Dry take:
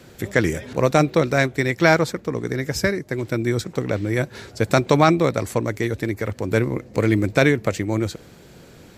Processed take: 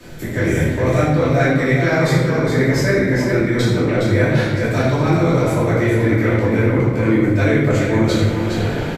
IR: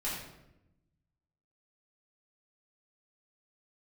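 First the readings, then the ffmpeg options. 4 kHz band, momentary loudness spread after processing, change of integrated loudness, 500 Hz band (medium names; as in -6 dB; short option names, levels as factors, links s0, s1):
+2.5 dB, 3 LU, +4.5 dB, +3.5 dB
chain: -filter_complex "[0:a]lowshelf=f=96:g=8,acrossover=split=210|3700[s0][s1][s2];[s1]dynaudnorm=f=210:g=3:m=5.62[s3];[s0][s3][s2]amix=inputs=3:normalize=0,alimiter=limit=0.531:level=0:latency=1,areverse,acompressor=threshold=0.0631:ratio=5,areverse,aecho=1:1:414:0.501[s4];[1:a]atrim=start_sample=2205,asetrate=36162,aresample=44100[s5];[s4][s5]afir=irnorm=-1:irlink=0,volume=1.58"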